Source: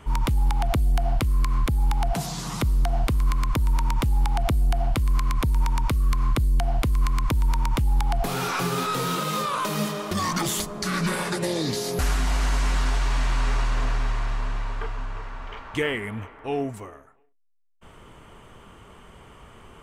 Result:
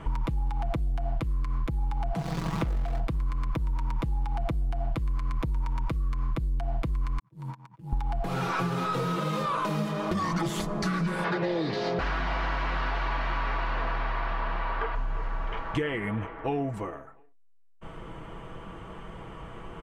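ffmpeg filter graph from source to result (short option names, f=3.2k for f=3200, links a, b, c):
-filter_complex "[0:a]asettb=1/sr,asplit=3[a][b][c];[a]atrim=end=2.184[d];[b]atrim=start=2.18:end=3,asetpts=PTS-STARTPTS,afade=t=in:d=0.004:c=qsin,afade=t=out:st=0.816:d=0.004:c=qsin,aemphasis=mode=reproduction:type=50kf,acrusher=bits=6:dc=4:mix=0:aa=0.000001[e];[c]atrim=start=2.996[f];[d][e]acrossfade=d=0.004:c1=hsin:c2=qsin[g];[g][f]acrossfade=d=0.004:c1=qsin:c2=hsin,asettb=1/sr,asplit=3[h][i][j];[h]atrim=end=7.194[k];[i]atrim=start=7.19:end=7.93,asetpts=PTS-STARTPTS,afade=t=in:d=0.004:c=qsin,afade=t=out:st=0.736:d=0.004:c=qsin,agate=range=-52dB:threshold=-18dB:ratio=16:release=100:detection=peak,highpass=f=130:w=0.5412,highpass=f=130:w=1.3066[l];[j]atrim=start=7.926[m];[k][l]acrossfade=d=0.004:c1=hsin:c2=qsin[n];[n][m]acrossfade=d=0.004:c1=qsin:c2=hsin,asettb=1/sr,asplit=3[o][p][q];[o]atrim=end=11.244[r];[p]atrim=start=11.24:end=14.95,asetpts=PTS-STARTPTS,afade=t=in:d=0.004:c=qsin,afade=t=out:st=3.706:d=0.004:c=qsin,lowpass=f=5k:w=0.5412,lowpass=f=5k:w=1.3066,asplit=2[s][t];[t]highpass=f=720:p=1,volume=14dB,asoftclip=type=tanh:threshold=-14dB[u];[s][u]amix=inputs=2:normalize=0,lowpass=f=3k:p=1,volume=-6dB[v];[q]atrim=start=14.946[w];[r][v]acrossfade=d=0.004:c1=hsin:c2=qsin[x];[x][w]acrossfade=d=0.004:c1=qsin:c2=hsin,lowpass=f=1.6k:p=1,aecho=1:1:6.1:0.46,acompressor=threshold=-32dB:ratio=6,volume=6dB"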